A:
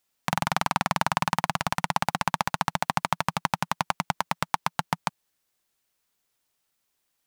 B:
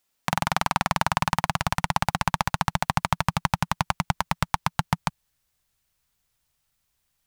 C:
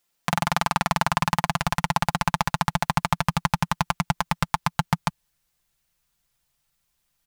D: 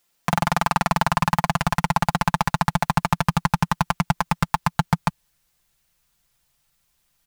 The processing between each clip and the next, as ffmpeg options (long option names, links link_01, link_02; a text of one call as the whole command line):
ffmpeg -i in.wav -af "asubboost=boost=7:cutoff=120,volume=1.5dB" out.wav
ffmpeg -i in.wav -af "aecho=1:1:5.8:0.46" out.wav
ffmpeg -i in.wav -af "asoftclip=type=tanh:threshold=-11dB,volume=5dB" out.wav